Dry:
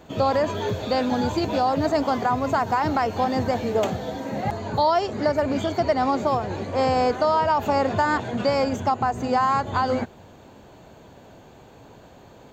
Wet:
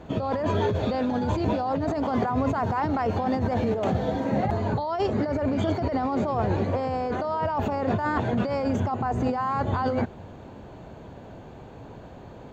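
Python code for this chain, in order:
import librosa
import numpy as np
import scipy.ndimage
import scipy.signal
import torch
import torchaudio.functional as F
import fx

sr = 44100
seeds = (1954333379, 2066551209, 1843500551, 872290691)

y = fx.lowpass(x, sr, hz=2100.0, slope=6)
y = fx.low_shelf(y, sr, hz=190.0, db=5.0)
y = fx.over_compress(y, sr, threshold_db=-25.0, ratio=-1.0)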